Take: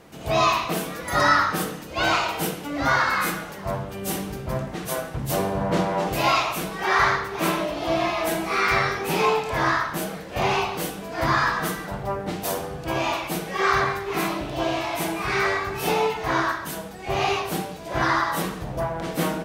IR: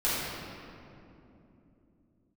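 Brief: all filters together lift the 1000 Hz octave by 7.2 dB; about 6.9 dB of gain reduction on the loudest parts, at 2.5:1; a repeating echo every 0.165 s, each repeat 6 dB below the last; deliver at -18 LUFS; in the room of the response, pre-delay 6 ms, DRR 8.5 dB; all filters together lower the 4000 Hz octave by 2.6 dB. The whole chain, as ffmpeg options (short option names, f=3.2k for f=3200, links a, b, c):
-filter_complex "[0:a]equalizer=f=1k:t=o:g=9,equalizer=f=4k:t=o:g=-4,acompressor=threshold=-20dB:ratio=2.5,aecho=1:1:165|330|495|660|825|990:0.501|0.251|0.125|0.0626|0.0313|0.0157,asplit=2[a][b];[1:a]atrim=start_sample=2205,adelay=6[c];[b][c]afir=irnorm=-1:irlink=0,volume=-20dB[d];[a][d]amix=inputs=2:normalize=0,volume=3.5dB"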